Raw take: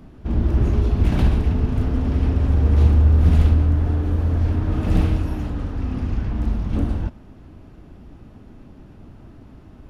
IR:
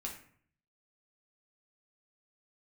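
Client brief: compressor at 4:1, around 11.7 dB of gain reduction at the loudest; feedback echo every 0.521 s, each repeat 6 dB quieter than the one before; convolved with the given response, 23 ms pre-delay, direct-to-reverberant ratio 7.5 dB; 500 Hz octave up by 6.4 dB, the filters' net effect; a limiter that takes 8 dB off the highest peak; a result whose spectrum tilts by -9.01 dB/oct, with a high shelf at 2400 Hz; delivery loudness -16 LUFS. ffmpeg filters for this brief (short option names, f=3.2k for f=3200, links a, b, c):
-filter_complex "[0:a]equalizer=f=500:t=o:g=8,highshelf=f=2.4k:g=3,acompressor=threshold=-24dB:ratio=4,alimiter=limit=-23dB:level=0:latency=1,aecho=1:1:521|1042|1563|2084|2605|3126:0.501|0.251|0.125|0.0626|0.0313|0.0157,asplit=2[a][b];[1:a]atrim=start_sample=2205,adelay=23[c];[b][c]afir=irnorm=-1:irlink=0,volume=-6.5dB[d];[a][d]amix=inputs=2:normalize=0,volume=14dB"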